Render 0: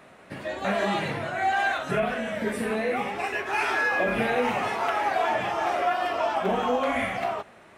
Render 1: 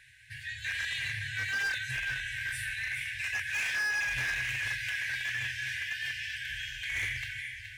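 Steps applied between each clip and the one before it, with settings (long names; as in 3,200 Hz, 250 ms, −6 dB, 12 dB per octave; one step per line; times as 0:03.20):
delay that swaps between a low-pass and a high-pass 211 ms, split 1,100 Hz, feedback 71%, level −5.5 dB
brick-wall band-stop 130–1,500 Hz
gain into a clipping stage and back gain 28.5 dB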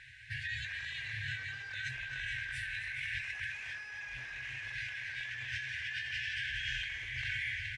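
compressor whose output falls as the input rises −40 dBFS, ratio −1
high-frequency loss of the air 96 metres
repeating echo 264 ms, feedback 60%, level −11 dB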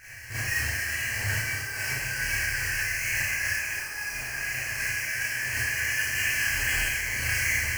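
each half-wave held at its own peak
Butterworth band-reject 3,600 Hz, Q 2.6
four-comb reverb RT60 0.73 s, combs from 27 ms, DRR −9.5 dB
level −1.5 dB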